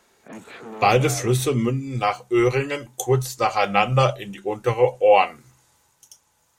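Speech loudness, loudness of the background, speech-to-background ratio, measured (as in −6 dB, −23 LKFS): −21.0 LKFS, −38.0 LKFS, 17.0 dB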